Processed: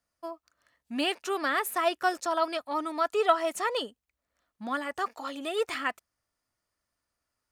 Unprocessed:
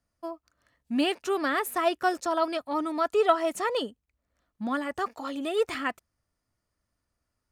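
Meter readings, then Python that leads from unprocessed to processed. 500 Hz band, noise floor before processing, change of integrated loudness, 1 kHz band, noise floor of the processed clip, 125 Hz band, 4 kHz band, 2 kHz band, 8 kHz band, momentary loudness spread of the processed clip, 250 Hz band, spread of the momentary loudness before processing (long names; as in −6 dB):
−2.5 dB, −82 dBFS, −1.5 dB, −0.5 dB, −85 dBFS, can't be measured, +1.0 dB, +0.5 dB, +1.0 dB, 16 LU, −5.5 dB, 14 LU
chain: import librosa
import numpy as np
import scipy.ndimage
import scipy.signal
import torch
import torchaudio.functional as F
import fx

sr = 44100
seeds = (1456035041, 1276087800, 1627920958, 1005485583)

y = fx.low_shelf(x, sr, hz=350.0, db=-11.5)
y = y * 10.0 ** (1.0 / 20.0)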